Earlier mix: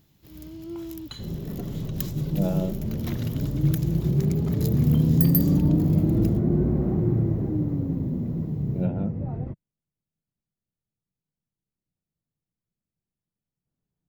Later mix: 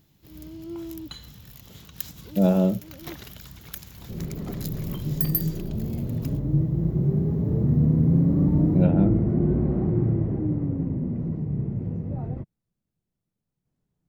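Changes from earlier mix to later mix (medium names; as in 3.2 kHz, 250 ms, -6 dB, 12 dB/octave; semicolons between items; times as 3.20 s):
speech +7.0 dB; second sound: entry +2.90 s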